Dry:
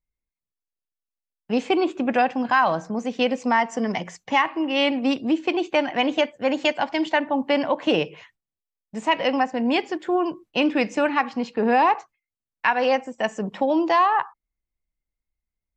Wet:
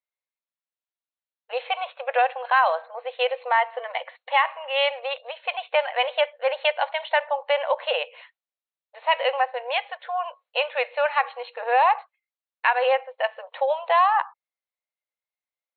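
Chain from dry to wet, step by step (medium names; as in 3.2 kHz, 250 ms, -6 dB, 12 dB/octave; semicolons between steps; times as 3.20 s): brick-wall FIR band-pass 470–4300 Hz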